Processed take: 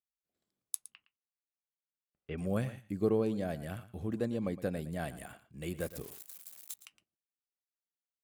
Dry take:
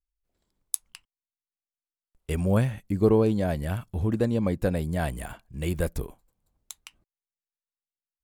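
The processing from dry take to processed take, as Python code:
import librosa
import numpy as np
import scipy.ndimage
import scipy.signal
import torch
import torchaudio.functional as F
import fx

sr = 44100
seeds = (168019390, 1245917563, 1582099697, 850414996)

y = fx.crossing_spikes(x, sr, level_db=-30.0, at=(5.8, 6.74))
y = scipy.signal.sosfilt(scipy.signal.butter(2, 130.0, 'highpass', fs=sr, output='sos'), y)
y = fx.notch(y, sr, hz=940.0, q=6.0)
y = fx.lowpass(y, sr, hz=3100.0, slope=24, at=(0.86, 2.38))
y = y + 10.0 ** (-15.5 / 20.0) * np.pad(y, (int(114 * sr / 1000.0), 0))[:len(y)]
y = F.gain(torch.from_numpy(y), -8.5).numpy()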